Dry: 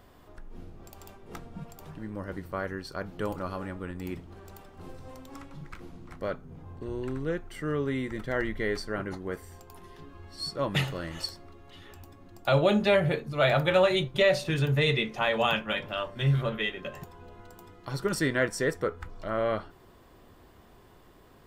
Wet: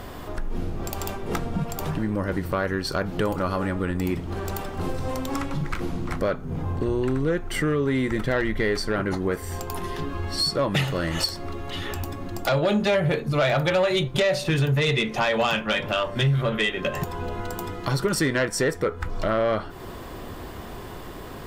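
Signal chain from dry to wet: compression 3:1, threshold -41 dBFS, peak gain reduction 17 dB; sine folder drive 8 dB, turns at -22 dBFS; trim +6.5 dB

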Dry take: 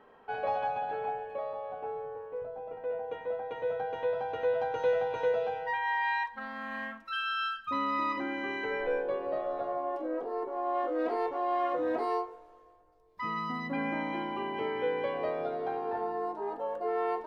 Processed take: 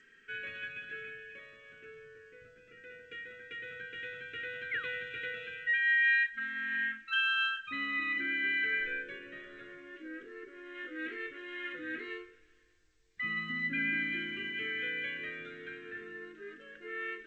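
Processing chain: steep low-pass 4.2 kHz 72 dB/octave; 12.08–14.50 s: bass shelf 160 Hz +6 dB; static phaser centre 2.1 kHz, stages 4; de-hum 98.07 Hz, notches 10; 4.71–4.93 s: painted sound fall 720–2300 Hz -42 dBFS; FFT filter 390 Hz 0 dB, 810 Hz -26 dB, 1.6 kHz +14 dB; trim -6 dB; G.722 64 kbps 16 kHz

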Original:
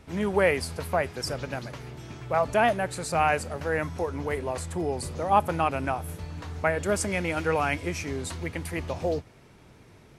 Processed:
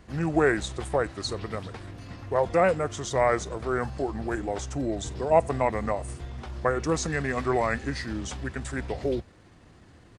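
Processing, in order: dynamic bell 920 Hz, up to +5 dB, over -46 dBFS, Q 7.1; pitch shift -4 st

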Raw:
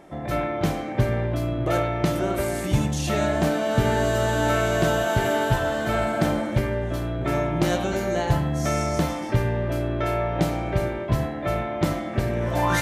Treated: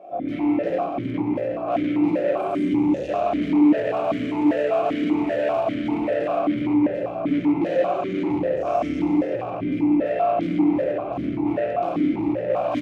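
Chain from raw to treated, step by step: doubling 16 ms -8 dB; on a send: feedback delay 91 ms, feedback 53%, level -7.5 dB; on the sum: reverberation RT60 1.9 s, pre-delay 5 ms, DRR -5.5 dB; in parallel at -9 dB: integer overflow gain 11 dB; on the sum: resonant low shelf 760 Hz +6 dB, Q 3; saturation -11.5 dBFS, distortion -9 dB; stepped vowel filter 5.1 Hz; trim +2.5 dB

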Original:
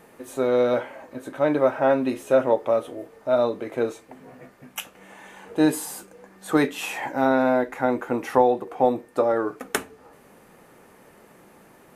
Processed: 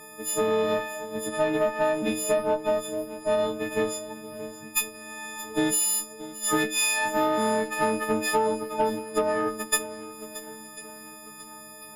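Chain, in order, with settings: partials quantised in pitch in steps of 6 st; compression 6:1, threshold -21 dBFS, peak gain reduction 10.5 dB; Chebyshev shaper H 6 -25 dB, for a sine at -10.5 dBFS; shuffle delay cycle 1045 ms, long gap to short 1.5:1, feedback 45%, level -16.5 dB

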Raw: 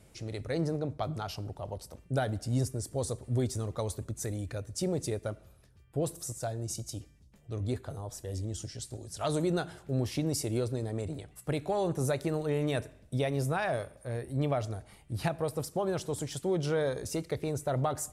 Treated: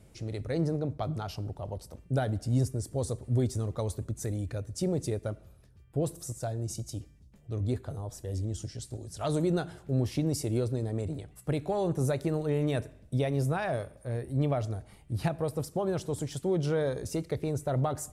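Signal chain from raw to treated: bass shelf 500 Hz +6 dB; trim -2.5 dB

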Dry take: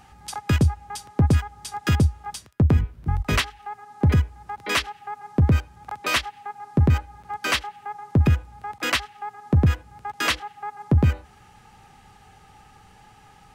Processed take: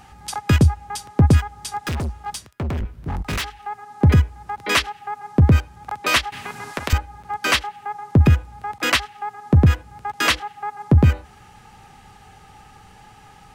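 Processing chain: 1.83–3.59 s: hard clipper -27 dBFS, distortion -9 dB; 6.32–6.93 s: spectrum-flattening compressor 10:1; trim +4.5 dB

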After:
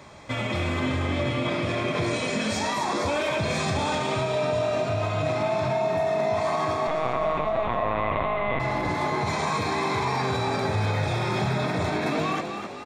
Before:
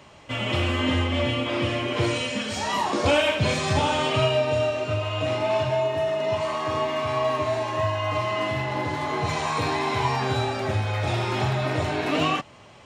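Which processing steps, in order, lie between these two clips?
peak limiter -21.5 dBFS, peak gain reduction 10.5 dB; Butterworth band-stop 2.9 kHz, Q 5.7; 6.87–8.60 s: LPC vocoder at 8 kHz pitch kept; frequency-shifting echo 255 ms, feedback 52%, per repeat +47 Hz, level -7.5 dB; on a send at -22 dB: reverberation RT60 0.30 s, pre-delay 94 ms; on the sum: trim +3 dB

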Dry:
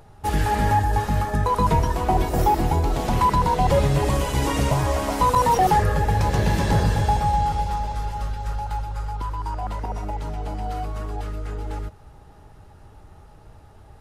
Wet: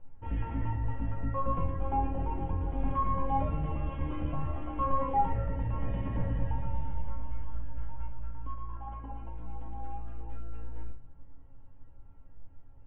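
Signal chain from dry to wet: steep low-pass 3 kHz 96 dB/octave; tilt EQ -3 dB/octave; feedback comb 250 Hz, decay 0.3 s, harmonics all, mix 90%; on a send at -8.5 dB: reverberation RT60 0.70 s, pre-delay 4 ms; on the sum: speed mistake 44.1 kHz file played as 48 kHz; trim -6.5 dB

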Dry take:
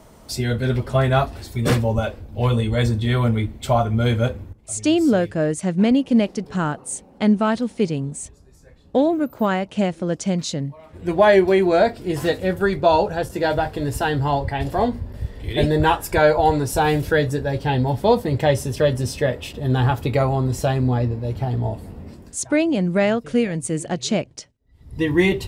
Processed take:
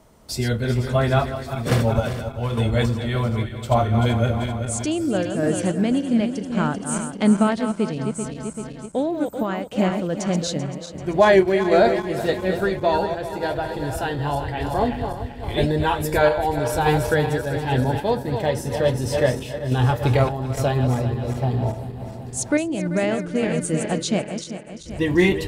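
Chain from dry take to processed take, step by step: backward echo that repeats 194 ms, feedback 73%, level -8 dB; random-step tremolo

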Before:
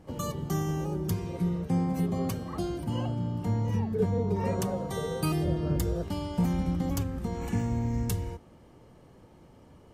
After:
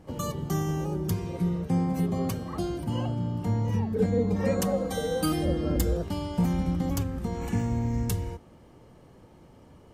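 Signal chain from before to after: 3.96–5.97 s: comb 3.8 ms, depth 98%; trim +1.5 dB

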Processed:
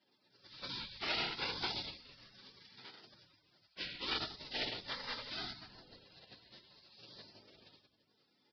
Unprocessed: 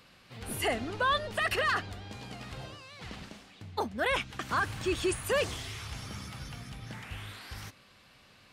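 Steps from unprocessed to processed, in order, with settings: spectral gate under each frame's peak -30 dB strong; half-wave rectifier; high-pass 820 Hz 12 dB/octave; speakerphone echo 100 ms, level -8 dB; overload inside the chain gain 32.5 dB; simulated room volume 110 m³, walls mixed, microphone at 2.3 m; spectral gate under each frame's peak -20 dB weak; resampled via 11.025 kHz; trim +5 dB

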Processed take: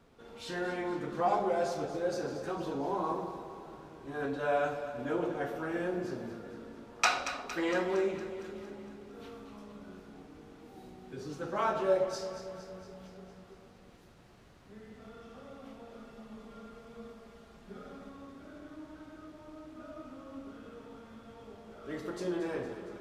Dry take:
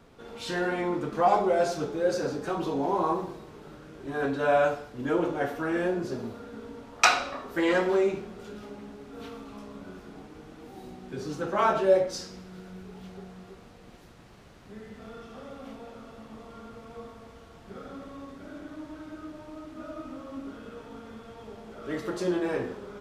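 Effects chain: 15.91–18.10 s: comb 4.9 ms, depth 67%; echo whose repeats swap between lows and highs 115 ms, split 820 Hz, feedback 77%, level -8.5 dB; trim -7 dB

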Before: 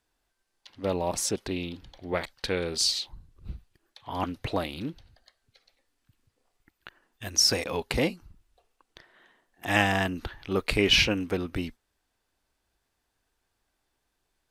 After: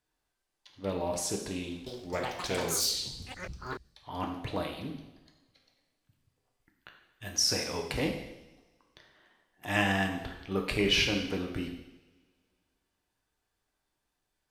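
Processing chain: two-slope reverb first 0.91 s, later 2.6 s, from -26 dB, DRR 1.5 dB; 1.60–4.30 s: ever faster or slower copies 263 ms, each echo +6 st, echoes 3; trim -6.5 dB

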